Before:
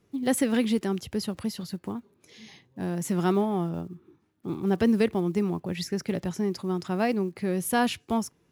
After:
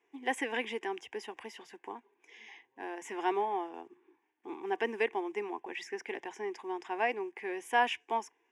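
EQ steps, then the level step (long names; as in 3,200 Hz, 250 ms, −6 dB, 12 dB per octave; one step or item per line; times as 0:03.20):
high-pass filter 680 Hz 12 dB per octave
high-frequency loss of the air 130 metres
phaser with its sweep stopped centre 870 Hz, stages 8
+4.0 dB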